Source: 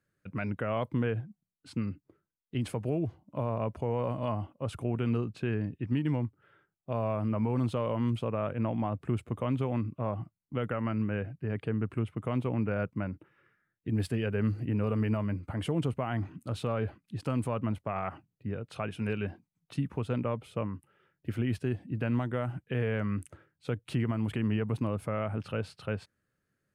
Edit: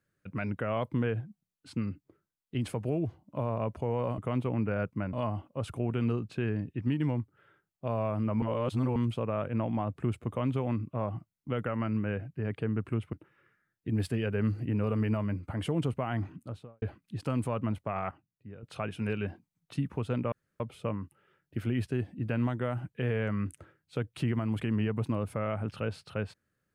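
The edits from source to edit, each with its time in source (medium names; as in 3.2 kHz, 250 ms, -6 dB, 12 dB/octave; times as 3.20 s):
7.47–8.01 s: reverse
12.18–13.13 s: move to 4.18 s
16.24–16.82 s: studio fade out
18.11–18.63 s: gain -11 dB
20.32 s: insert room tone 0.28 s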